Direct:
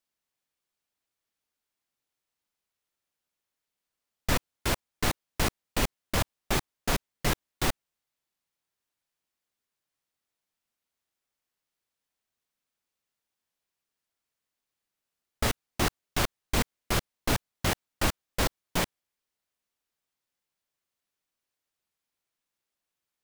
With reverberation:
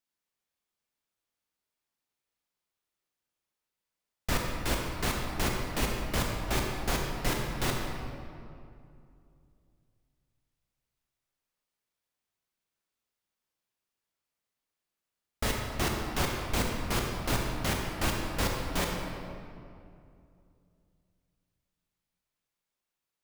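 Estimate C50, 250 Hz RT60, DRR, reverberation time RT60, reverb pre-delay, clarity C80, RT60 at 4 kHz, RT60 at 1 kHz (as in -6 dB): 1.0 dB, 3.0 s, 0.0 dB, 2.5 s, 23 ms, 2.5 dB, 1.5 s, 2.3 s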